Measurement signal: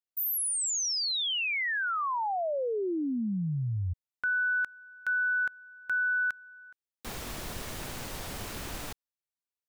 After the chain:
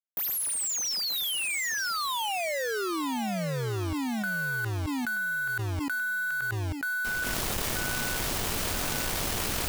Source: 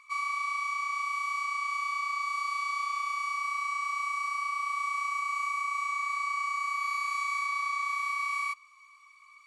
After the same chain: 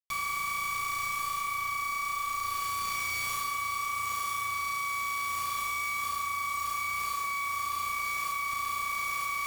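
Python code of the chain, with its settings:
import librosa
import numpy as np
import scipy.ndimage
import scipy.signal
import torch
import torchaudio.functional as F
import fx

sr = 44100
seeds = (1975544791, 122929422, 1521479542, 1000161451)

p1 = fx.quant_dither(x, sr, seeds[0], bits=6, dither='none')
p2 = p1 + fx.echo_feedback(p1, sr, ms=931, feedback_pct=26, wet_db=-3.5, dry=0)
p3 = fx.env_flatten(p2, sr, amount_pct=100)
y = F.gain(torch.from_numpy(p3), -6.0).numpy()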